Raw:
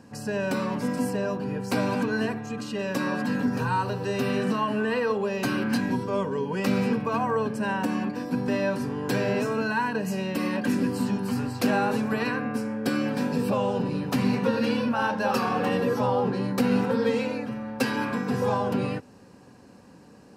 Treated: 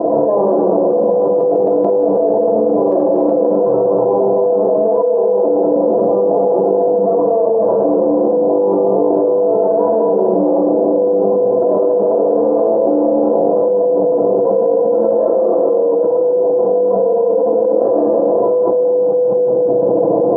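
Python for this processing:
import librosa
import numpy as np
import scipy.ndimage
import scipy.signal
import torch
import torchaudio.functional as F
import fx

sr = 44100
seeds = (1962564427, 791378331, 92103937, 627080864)

y = fx.lower_of_two(x, sr, delay_ms=0.61)
y = scipy.signal.sosfilt(scipy.signal.butter(8, 860.0, 'lowpass', fs=sr, output='sos'), y)
y = y + 0.96 * np.pad(y, (int(6.0 * sr / 1000.0), 0))[:len(y)]
y = fx.chopper(y, sr, hz=fx.line((0.82, 8.4), (3.5, 3.0)), depth_pct=65, duty_pct=30, at=(0.82, 3.5), fade=0.02)
y = fx.highpass_res(y, sr, hz=500.0, q=4.1)
y = fx.echo_feedback(y, sr, ms=209, feedback_pct=37, wet_db=-10.0)
y = fx.room_shoebox(y, sr, seeds[0], volume_m3=3400.0, walls='mixed', distance_m=3.0)
y = fx.env_flatten(y, sr, amount_pct=100)
y = F.gain(torch.from_numpy(y), -5.5).numpy()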